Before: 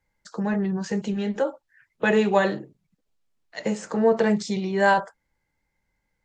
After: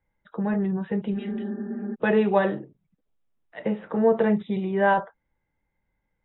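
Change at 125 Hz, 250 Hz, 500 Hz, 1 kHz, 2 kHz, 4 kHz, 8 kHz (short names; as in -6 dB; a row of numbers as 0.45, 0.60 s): 0.0 dB, 0.0 dB, -1.0 dB, -1.5 dB, -3.5 dB, -8.5 dB, under -35 dB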